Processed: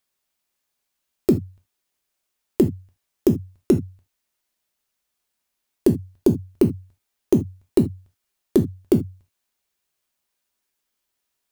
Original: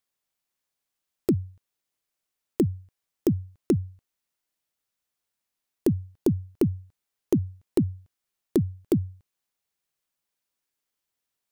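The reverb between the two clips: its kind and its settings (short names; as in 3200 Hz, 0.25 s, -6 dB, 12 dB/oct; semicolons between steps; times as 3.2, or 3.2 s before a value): non-linear reverb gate 0.1 s falling, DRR 4.5 dB; gain +4.5 dB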